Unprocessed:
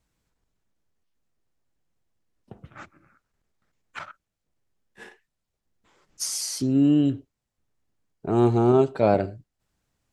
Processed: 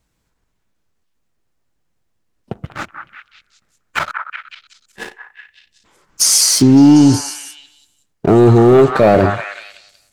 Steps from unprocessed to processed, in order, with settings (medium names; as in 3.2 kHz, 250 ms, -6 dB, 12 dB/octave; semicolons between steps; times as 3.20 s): waveshaping leveller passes 2; on a send: repeats whose band climbs or falls 186 ms, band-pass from 1.3 kHz, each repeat 0.7 oct, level -4 dB; on the sum: loudness maximiser +12 dB; trim -1 dB